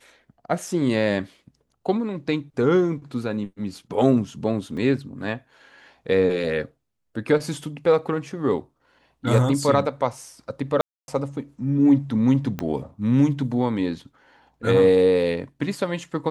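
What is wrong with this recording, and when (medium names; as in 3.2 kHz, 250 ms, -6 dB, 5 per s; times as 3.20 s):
4.77 s: dropout 3.9 ms
10.81–11.08 s: dropout 271 ms
12.59 s: pop -14 dBFS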